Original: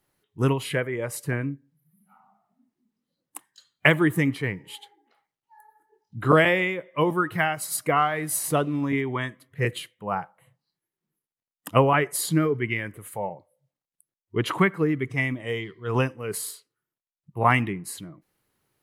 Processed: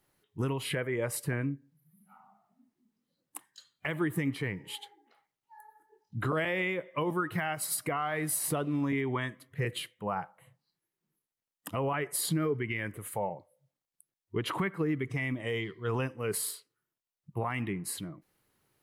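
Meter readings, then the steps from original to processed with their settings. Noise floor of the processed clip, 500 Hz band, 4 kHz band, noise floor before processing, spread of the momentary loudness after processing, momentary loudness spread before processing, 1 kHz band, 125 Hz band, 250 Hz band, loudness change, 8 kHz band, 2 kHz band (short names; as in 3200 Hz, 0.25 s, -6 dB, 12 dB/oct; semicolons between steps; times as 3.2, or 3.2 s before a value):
under -85 dBFS, -8.5 dB, -6.0 dB, under -85 dBFS, 13 LU, 16 LU, -10.0 dB, -7.5 dB, -7.0 dB, -8.0 dB, -3.5 dB, -9.5 dB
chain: dynamic EQ 6500 Hz, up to -5 dB, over -52 dBFS, Q 3.5; compressor 2.5:1, threshold -28 dBFS, peak gain reduction 10.5 dB; limiter -21 dBFS, peak gain reduction 10 dB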